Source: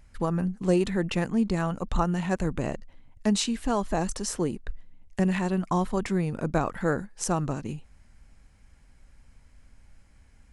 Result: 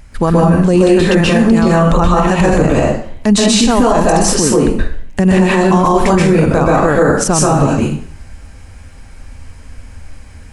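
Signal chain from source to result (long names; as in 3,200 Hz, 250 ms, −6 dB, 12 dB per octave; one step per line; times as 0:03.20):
dense smooth reverb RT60 0.53 s, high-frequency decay 0.85×, pre-delay 115 ms, DRR −5.5 dB
boost into a limiter +16.5 dB
level −1 dB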